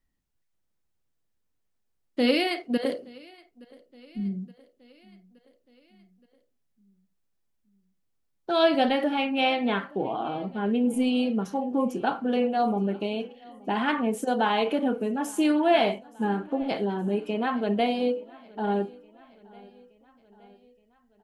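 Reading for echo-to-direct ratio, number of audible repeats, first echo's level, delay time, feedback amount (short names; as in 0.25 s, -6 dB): -22.5 dB, 3, -24.0 dB, 0.871 s, 58%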